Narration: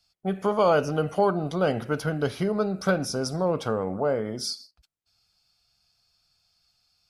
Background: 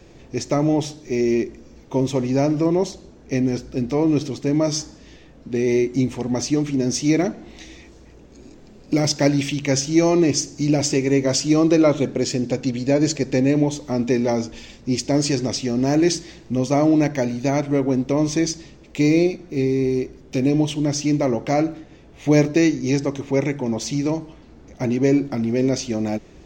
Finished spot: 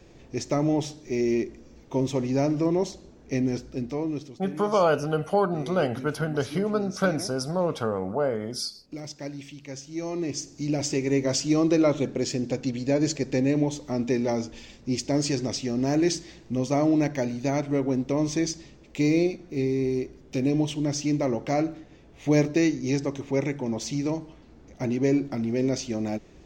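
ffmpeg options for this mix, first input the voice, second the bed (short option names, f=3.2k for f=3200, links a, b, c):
-filter_complex "[0:a]adelay=4150,volume=-0.5dB[a];[1:a]volume=8dB,afade=t=out:st=3.54:d=0.84:silence=0.211349,afade=t=in:st=9.88:d=1.28:silence=0.223872[b];[a][b]amix=inputs=2:normalize=0"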